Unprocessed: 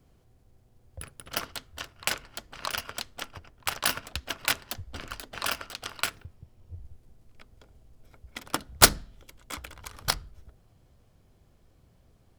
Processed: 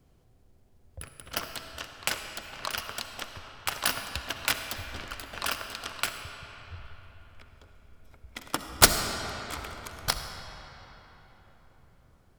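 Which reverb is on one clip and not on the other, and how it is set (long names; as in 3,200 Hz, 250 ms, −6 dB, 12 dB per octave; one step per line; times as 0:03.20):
comb and all-pass reverb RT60 4.2 s, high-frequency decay 0.65×, pre-delay 25 ms, DRR 6 dB
level −1 dB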